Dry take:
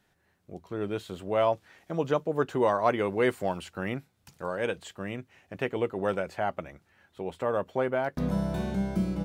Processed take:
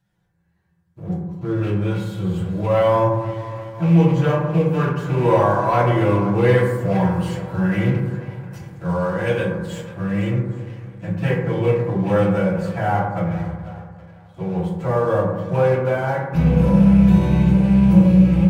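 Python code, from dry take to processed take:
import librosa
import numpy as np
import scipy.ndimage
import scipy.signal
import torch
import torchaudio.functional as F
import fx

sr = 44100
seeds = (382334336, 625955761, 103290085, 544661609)

y = fx.rattle_buzz(x, sr, strikes_db=-35.0, level_db=-30.0)
y = fx.low_shelf_res(y, sr, hz=220.0, db=6.5, q=3.0)
y = fx.stretch_vocoder_free(y, sr, factor=2.0)
y = fx.echo_swing(y, sr, ms=816, ratio=1.5, feedback_pct=36, wet_db=-16)
y = fx.leveller(y, sr, passes=2)
y = fx.rev_fdn(y, sr, rt60_s=1.1, lf_ratio=1.55, hf_ratio=0.3, size_ms=18.0, drr_db=-5.5)
y = y * 10.0 ** (-5.5 / 20.0)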